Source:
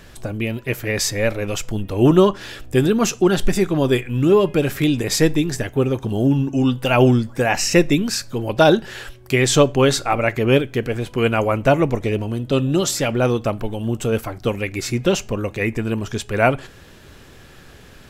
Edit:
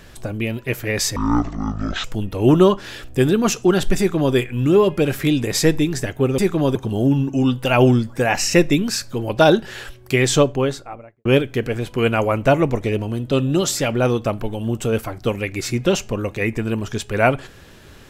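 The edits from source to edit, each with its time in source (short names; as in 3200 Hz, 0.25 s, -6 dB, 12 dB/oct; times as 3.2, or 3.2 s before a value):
1.16–1.61 speed 51%
3.55–3.92 copy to 5.95
9.37–10.45 studio fade out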